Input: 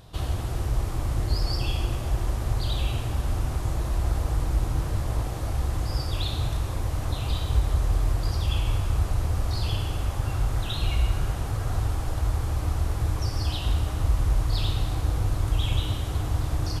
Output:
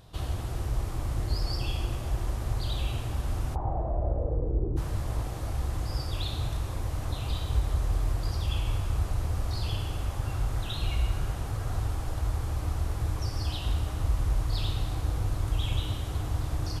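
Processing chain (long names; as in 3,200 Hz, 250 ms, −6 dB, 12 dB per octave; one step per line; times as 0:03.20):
0:03.54–0:04.76: low-pass with resonance 870 Hz → 380 Hz, resonance Q 4.9
level −4 dB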